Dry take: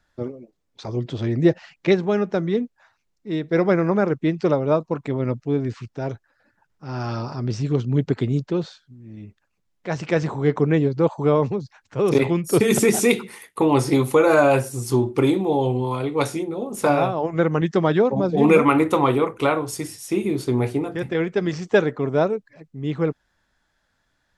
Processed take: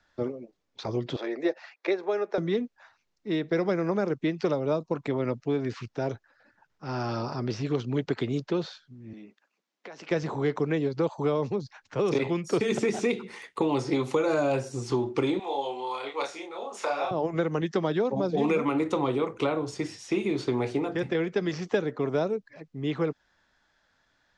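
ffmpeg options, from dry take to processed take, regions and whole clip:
ffmpeg -i in.wav -filter_complex "[0:a]asettb=1/sr,asplit=3[link_01][link_02][link_03];[link_01]atrim=end=1.164[link_04];[link_02]atrim=start=1.16:end=2.38,asetpts=PTS-STARTPTS,afade=type=in:duration=0.004:curve=qsin,afade=type=out:start_time=1.216:duration=0.004:curve=qsin,highpass=frequency=390:width=0.5412,highpass=frequency=390:width=1.3066,highshelf=frequency=5000:gain=-11.5,bandreject=frequency=3000:width=6.7[link_05];[link_03]atrim=start=2.376[link_06];[link_04][link_05]acrossfade=duration=0.004:curve1=hsin:curve2=qsin[link_07];[link_07][link_06]acrossfade=duration=0.004:curve1=qsin:curve2=hsin,asettb=1/sr,asplit=3[link_08][link_09][link_10];[link_08]atrim=end=9.134[link_11];[link_09]atrim=start=9.13:end=10.11,asetpts=PTS-STARTPTS,afade=type=in:duration=0.004:curve=qsin,afade=type=out:start_time=0.976:duration=0.004:curve=qsin,highpass=frequency=220:width=0.5412,highpass=frequency=220:width=1.3066,acompressor=threshold=-40dB:ratio=12:attack=3.2:release=140:knee=1:detection=peak[link_12];[link_10]atrim=start=10.106[link_13];[link_11][link_12]acrossfade=duration=0.004:curve1=hsin:curve2=qsin[link_14];[link_14][link_13]acrossfade=duration=0.004:curve1=qsin:curve2=hsin,asettb=1/sr,asplit=3[link_15][link_16][link_17];[link_15]atrim=end=15.394[link_18];[link_16]atrim=start=15.39:end=17.11,asetpts=PTS-STARTPTS,afade=type=in:duration=0.004:curve=qsin,afade=type=out:start_time=1.716:duration=0.004:curve=qsin,highpass=900,asplit=2[link_19][link_20];[link_20]adelay=29,volume=-2.5dB[link_21];[link_19][link_21]amix=inputs=2:normalize=0,atrim=end_sample=75852[link_22];[link_17]atrim=start=17.106[link_23];[link_18][link_22]acrossfade=duration=0.004:curve1=hsin:curve2=qsin[link_24];[link_24][link_23]acrossfade=duration=0.004:curve1=qsin:curve2=hsin,lowpass=frequency=6600:width=0.5412,lowpass=frequency=6600:width=1.3066,lowshelf=frequency=200:gain=-8,acrossover=split=260|640|3700[link_25][link_26][link_27][link_28];[link_25]acompressor=threshold=-35dB:ratio=4[link_29];[link_26]acompressor=threshold=-30dB:ratio=4[link_30];[link_27]acompressor=threshold=-38dB:ratio=4[link_31];[link_28]acompressor=threshold=-48dB:ratio=4[link_32];[link_29][link_30][link_31][link_32]amix=inputs=4:normalize=0,volume=2dB" out.wav

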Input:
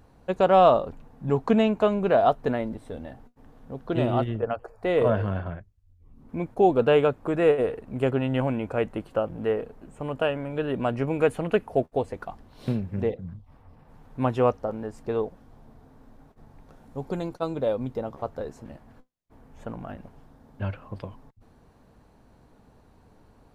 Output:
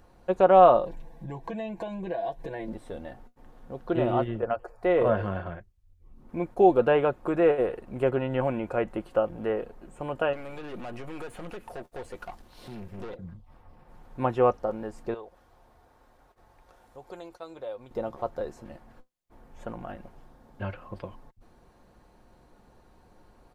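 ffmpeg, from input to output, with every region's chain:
ffmpeg -i in.wav -filter_complex "[0:a]asettb=1/sr,asplit=3[link_01][link_02][link_03];[link_01]atrim=end=0.854[link_04];[link_02]atrim=start=0.85:end=2.68,asetpts=PTS-STARTPTS,afade=type=in:duration=0.004:curve=qsin,afade=type=out:start_time=1.826:duration=0.004:curve=qsin,aecho=1:1:6.1:0.88,atrim=end_sample=80703,acompressor=threshold=-33dB:ratio=3:attack=3.2:release=140:knee=1:detection=peak,asuperstop=centerf=1300:order=8:qfactor=3.6[link_05];[link_03]atrim=start=2.676[link_06];[link_04][link_05]acrossfade=duration=0.004:curve1=hsin:curve2=qsin[link_07];[link_07][link_06]acrossfade=duration=0.004:curve1=qsin:curve2=hsin,asettb=1/sr,asplit=3[link_08][link_09][link_10];[link_08]atrim=end=10.334[link_11];[link_09]atrim=start=10.33:end=13.16,asetpts=PTS-STARTPTS,afade=type=in:duration=0.004:curve=qsin,afade=type=out:start_time=2.826:duration=0.004:curve=qsin,highshelf=frequency=2700:gain=10,acompressor=threshold=-25dB:ratio=6:attack=3.2:release=140:knee=1:detection=peak,aeval=exprs='(tanh(50.1*val(0)+0.45)-tanh(0.45))/50.1':channel_layout=same[link_12];[link_10]atrim=start=13.156[link_13];[link_11][link_12]acrossfade=duration=0.004:curve1=hsin:curve2=qsin[link_14];[link_14][link_13]acrossfade=duration=0.004:curve1=qsin:curve2=hsin,asettb=1/sr,asplit=3[link_15][link_16][link_17];[link_15]atrim=end=15.144[link_18];[link_16]atrim=start=15.14:end=17.91,asetpts=PTS-STARTPTS,afade=type=in:duration=0.004:curve=qsin,afade=type=out:start_time=2.766:duration=0.004:curve=qsin,highpass=48,equalizer=frequency=190:width_type=o:width=1.7:gain=-13.5,acompressor=threshold=-51dB:ratio=1.5:attack=3.2:release=140:knee=1:detection=peak[link_19];[link_17]atrim=start=17.906[link_20];[link_18][link_19]acrossfade=duration=0.004:curve1=hsin:curve2=qsin[link_21];[link_21][link_20]acrossfade=duration=0.004:curve1=qsin:curve2=hsin,acrossover=split=2500[link_22][link_23];[link_23]acompressor=threshold=-53dB:ratio=4:attack=1:release=60[link_24];[link_22][link_24]amix=inputs=2:normalize=0,equalizer=frequency=160:width=1.5:gain=-7,aecho=1:1:5.6:0.37" out.wav

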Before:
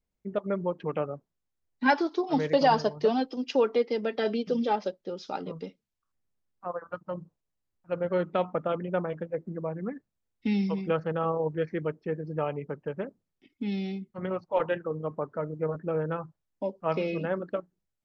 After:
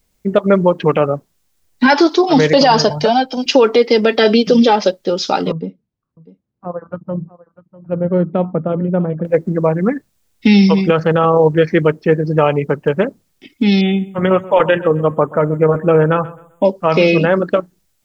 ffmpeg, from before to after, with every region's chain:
ffmpeg -i in.wav -filter_complex "[0:a]asettb=1/sr,asplit=3[link_01][link_02][link_03];[link_01]atrim=end=2.904[link_04];[link_02]atrim=start=2.9:end=3.46,asetpts=PTS-STARTPTS,afade=type=in:duration=0.004:curve=qsin,afade=type=out:start_time=0.556:duration=0.004:curve=qsin,aecho=1:1:1.3:0.72,atrim=end_sample=24696,acrossover=split=480|1800[link_05][link_06][link_07];[link_05]acompressor=threshold=-39dB:ratio=4[link_08];[link_06]acompressor=threshold=-32dB:ratio=4[link_09];[link_07]acompressor=threshold=-51dB:ratio=4[link_10];[link_08][link_09][link_10]amix=inputs=3:normalize=0[link_11];[link_03]atrim=start=3.456[link_12];[link_04][link_11]acrossfade=duration=0.004:curve1=hsin:curve2=qsin[link_13];[link_13][link_12]acrossfade=duration=0.004:curve1=qsin:curve2=hsin,asettb=1/sr,asplit=3[link_14][link_15][link_16];[link_14]atrim=end=5.524[link_17];[link_15]atrim=start=5.52:end=9.25,asetpts=PTS-STARTPTS,afade=type=in:duration=0.004:curve=qsin,afade=type=out:start_time=3.726:duration=0.004:curve=qsin,bandpass=frequency=150:width_type=q:width=0.81,aecho=1:1:647:0.112,atrim=end_sample=164493[link_18];[link_16]atrim=start=9.246[link_19];[link_17][link_18]acrossfade=duration=0.004:curve1=hsin:curve2=qsin[link_20];[link_20][link_19]acrossfade=duration=0.004:curve1=qsin:curve2=hsin,asettb=1/sr,asplit=3[link_21][link_22][link_23];[link_21]atrim=end=13.814[link_24];[link_22]atrim=start=13.81:end=16.65,asetpts=PTS-STARTPTS,afade=type=in:duration=0.004:curve=qsin,afade=type=out:start_time=2.836:duration=0.004:curve=qsin,asuperstop=centerf=4900:order=20:qfactor=1.7,asplit=2[link_25][link_26];[link_26]adelay=130,lowpass=frequency=2500:poles=1,volume=-19dB,asplit=2[link_27][link_28];[link_28]adelay=130,lowpass=frequency=2500:poles=1,volume=0.32,asplit=2[link_29][link_30];[link_30]adelay=130,lowpass=frequency=2500:poles=1,volume=0.32[link_31];[link_25][link_27][link_29][link_31]amix=inputs=4:normalize=0,atrim=end_sample=125244[link_32];[link_23]atrim=start=16.646[link_33];[link_24][link_32]acrossfade=duration=0.004:curve1=hsin:curve2=qsin[link_34];[link_34][link_33]acrossfade=duration=0.004:curve1=qsin:curve2=hsin,highshelf=frequency=2800:gain=8.5,alimiter=level_in=19.5dB:limit=-1dB:release=50:level=0:latency=1,volume=-1dB" out.wav

